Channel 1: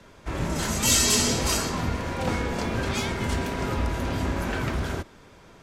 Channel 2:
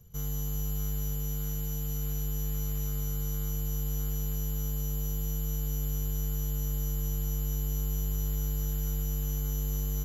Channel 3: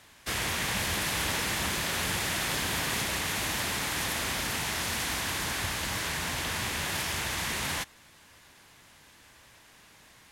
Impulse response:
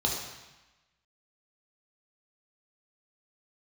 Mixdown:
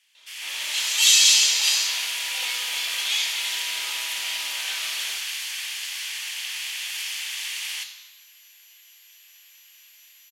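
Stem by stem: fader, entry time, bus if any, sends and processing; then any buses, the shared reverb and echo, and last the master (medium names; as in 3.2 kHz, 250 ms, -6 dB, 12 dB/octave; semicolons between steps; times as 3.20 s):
0.0 dB, 0.15 s, send -4.5 dB, none
-14.0 dB, 1.15 s, no send, none
-8.5 dB, 0.00 s, send -13 dB, level rider gain up to 9.5 dB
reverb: on, RT60 1.1 s, pre-delay 3 ms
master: resonant high-pass 2.9 kHz, resonance Q 1.7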